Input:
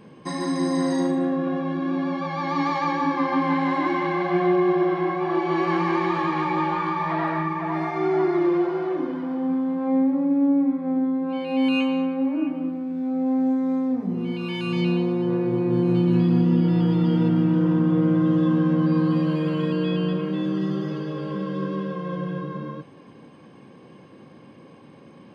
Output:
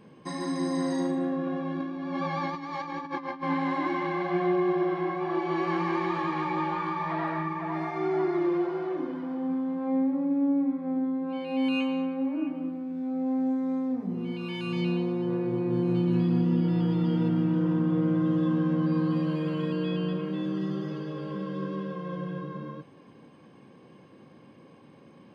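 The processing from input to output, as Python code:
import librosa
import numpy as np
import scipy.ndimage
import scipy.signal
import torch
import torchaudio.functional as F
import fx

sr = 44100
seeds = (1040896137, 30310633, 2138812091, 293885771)

y = fx.over_compress(x, sr, threshold_db=-27.0, ratio=-0.5, at=(1.8, 3.43))
y = y * 10.0 ** (-5.5 / 20.0)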